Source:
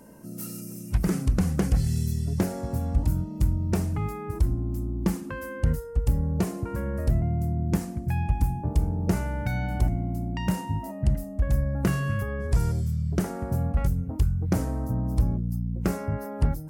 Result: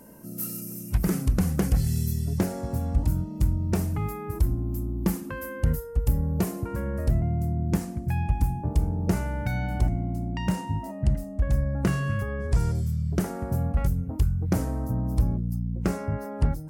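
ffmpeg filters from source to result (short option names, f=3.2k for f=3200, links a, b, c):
-af "asetnsamples=n=441:p=0,asendcmd='2.38 equalizer g 1.5;3.79 equalizer g 10;6.67 equalizer g 0.5;9.8 equalizer g -7;12.75 equalizer g 2.5;15.54 equalizer g -6.5',equalizer=f=13k:t=o:w=0.48:g=9.5"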